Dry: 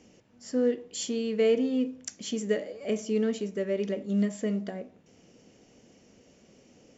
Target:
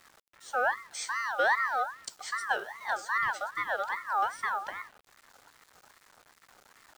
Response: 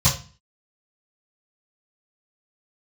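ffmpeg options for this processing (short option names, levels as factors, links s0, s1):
-af "acrusher=bits=8:mix=0:aa=0.000001,aeval=exprs='val(0)*sin(2*PI*1300*n/s+1300*0.25/2.5*sin(2*PI*2.5*n/s))':c=same"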